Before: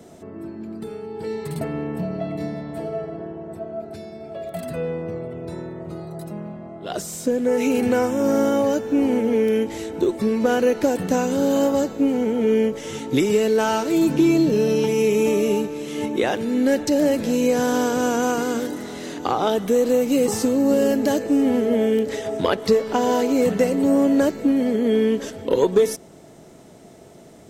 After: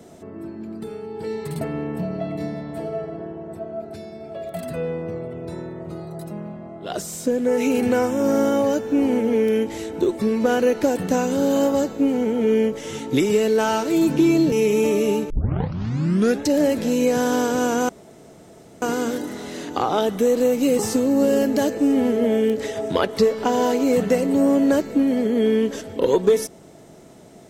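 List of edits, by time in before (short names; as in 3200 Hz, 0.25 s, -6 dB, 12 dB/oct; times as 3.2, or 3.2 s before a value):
14.52–14.94 cut
15.72 tape start 1.15 s
18.31 insert room tone 0.93 s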